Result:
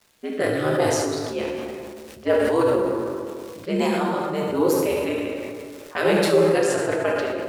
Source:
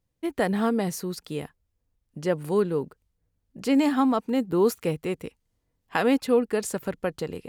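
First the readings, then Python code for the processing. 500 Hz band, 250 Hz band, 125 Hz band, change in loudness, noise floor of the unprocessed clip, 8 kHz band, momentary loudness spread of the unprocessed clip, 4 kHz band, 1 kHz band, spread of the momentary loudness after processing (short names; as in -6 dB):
+6.0 dB, 0.0 dB, +3.5 dB, +3.5 dB, -77 dBFS, +6.0 dB, 12 LU, +6.5 dB, +4.0 dB, 14 LU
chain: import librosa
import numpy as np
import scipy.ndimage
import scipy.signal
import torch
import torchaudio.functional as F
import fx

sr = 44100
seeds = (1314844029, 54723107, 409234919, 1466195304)

y = fx.env_lowpass(x, sr, base_hz=1200.0, full_db=-21.0)
y = scipy.signal.sosfilt(scipy.signal.butter(2, 410.0, 'highpass', fs=sr, output='sos'), y)
y = fx.rider(y, sr, range_db=3, speed_s=2.0)
y = fx.dmg_crackle(y, sr, seeds[0], per_s=530.0, level_db=-46.0)
y = y * np.sin(2.0 * np.pi * 77.0 * np.arange(len(y)) / sr)
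y = fx.rotary_switch(y, sr, hz=0.7, then_hz=6.0, switch_at_s=3.22)
y = y + 10.0 ** (-11.5 / 20.0) * np.pad(y, (int(73 * sr / 1000.0), 0))[:len(y)]
y = fx.rev_plate(y, sr, seeds[1], rt60_s=1.7, hf_ratio=0.65, predelay_ms=0, drr_db=-0.5)
y = fx.sustainer(y, sr, db_per_s=23.0)
y = F.gain(torch.from_numpy(y), 6.5).numpy()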